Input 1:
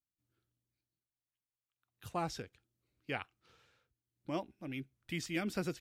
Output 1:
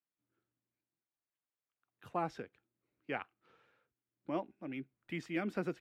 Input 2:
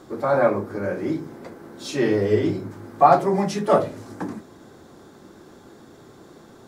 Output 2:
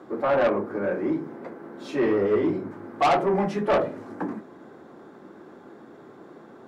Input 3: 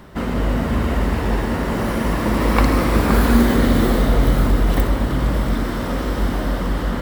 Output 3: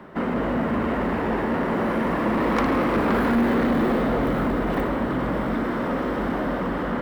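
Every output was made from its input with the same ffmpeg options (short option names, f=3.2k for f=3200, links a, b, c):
-filter_complex "[0:a]acrossover=split=160 2500:gain=0.141 1 0.141[a][b][c];[a][b][c]amix=inputs=3:normalize=0,asoftclip=type=tanh:threshold=-17.5dB,volume=1.5dB"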